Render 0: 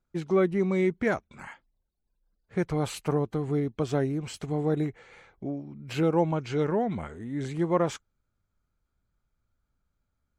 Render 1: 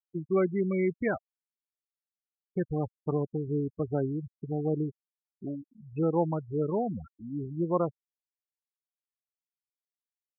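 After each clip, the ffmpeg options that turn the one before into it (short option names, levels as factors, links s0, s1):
-af "afftfilt=real='re*gte(hypot(re,im),0.0708)':imag='im*gte(hypot(re,im),0.0708)':win_size=1024:overlap=0.75,volume=0.75"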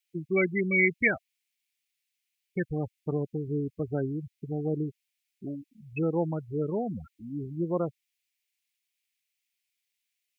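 -af "highshelf=f=1600:t=q:w=3:g=12.5"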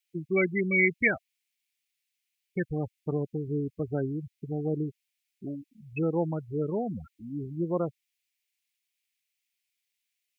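-af anull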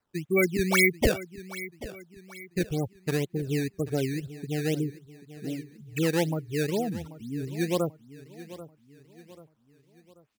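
-af "acrusher=samples=12:mix=1:aa=0.000001:lfo=1:lforange=19.2:lforate=2,aecho=1:1:787|1574|2361|3148:0.158|0.0697|0.0307|0.0135,volume=1.26"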